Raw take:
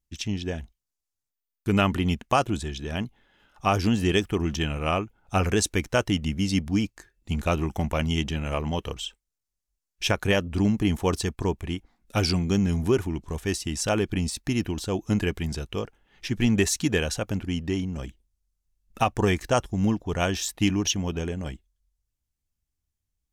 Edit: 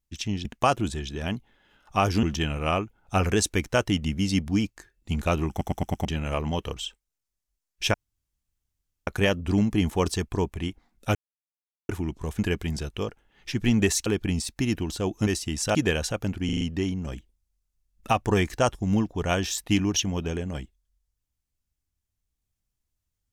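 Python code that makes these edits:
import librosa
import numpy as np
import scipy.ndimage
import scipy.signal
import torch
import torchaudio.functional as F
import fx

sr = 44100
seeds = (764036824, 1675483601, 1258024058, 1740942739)

y = fx.edit(x, sr, fx.cut(start_s=0.45, length_s=1.69),
    fx.cut(start_s=3.92, length_s=0.51),
    fx.stutter_over(start_s=7.7, slice_s=0.11, count=5),
    fx.insert_room_tone(at_s=10.14, length_s=1.13),
    fx.silence(start_s=12.22, length_s=0.74),
    fx.swap(start_s=13.46, length_s=0.48, other_s=15.15, other_length_s=1.67),
    fx.stutter(start_s=17.52, slice_s=0.04, count=5), tone=tone)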